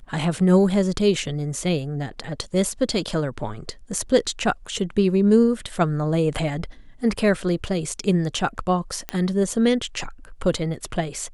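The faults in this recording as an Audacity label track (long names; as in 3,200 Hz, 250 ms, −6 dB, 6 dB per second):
9.090000	9.090000	click −11 dBFS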